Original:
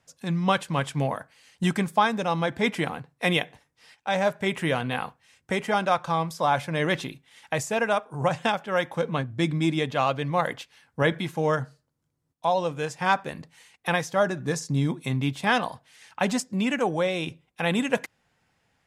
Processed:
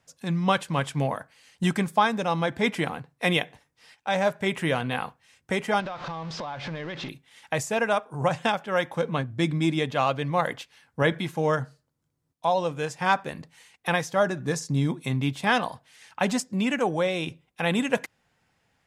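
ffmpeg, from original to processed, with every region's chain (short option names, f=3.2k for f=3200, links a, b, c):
-filter_complex "[0:a]asettb=1/sr,asplit=3[a][b][c];[a]atrim=end=5.804[d];[b]atrim=start=5.8:end=7.09,asetpts=PTS-STARTPTS,afade=t=in:d=0.004:c=qsin,afade=t=out:st=1.286:d=0.004:c=qsin,aeval=exprs='val(0)+0.5*0.0376*sgn(val(0))':c=same,lowpass=f=5k:w=0.5412,lowpass=f=5k:w=1.3066,acompressor=threshold=-31dB:ratio=8:attack=3.2:release=140:knee=1:detection=peak[e];[c]atrim=start=7.086[f];[d][e]acrossfade=d=0.004:c1=hsin:c2=qsin[g];[g][f]acrossfade=d=0.004:c1=qsin:c2=hsin"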